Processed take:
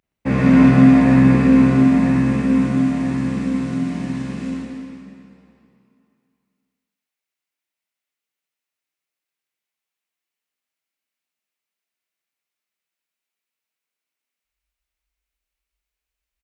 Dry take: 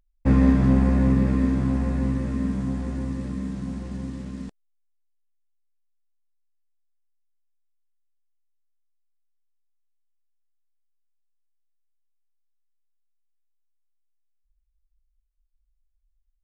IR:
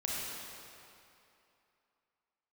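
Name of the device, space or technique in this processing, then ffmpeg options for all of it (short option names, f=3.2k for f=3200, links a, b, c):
PA in a hall: -filter_complex "[0:a]highpass=150,equalizer=f=2.3k:t=o:w=0.93:g=7,aecho=1:1:120:0.447[a];[1:a]atrim=start_sample=2205[b];[a][b]afir=irnorm=-1:irlink=0,volume=3.5dB"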